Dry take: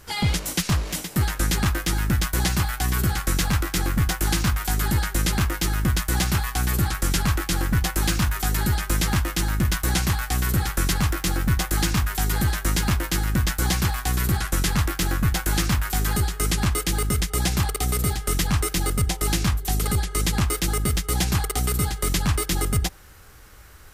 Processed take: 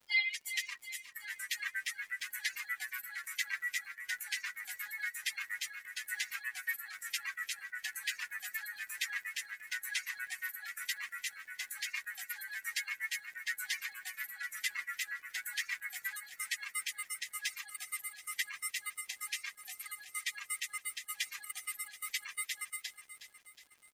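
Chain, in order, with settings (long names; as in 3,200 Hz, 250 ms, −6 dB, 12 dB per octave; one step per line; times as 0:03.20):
spectral dynamics exaggerated over time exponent 3
brickwall limiter −21.5 dBFS, peak gain reduction 5.5 dB
four-pole ladder high-pass 1,800 Hz, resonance 70%
surface crackle 170 per second −59 dBFS
on a send: repeating echo 365 ms, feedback 55%, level −12 dB
on the sum: level +7 dB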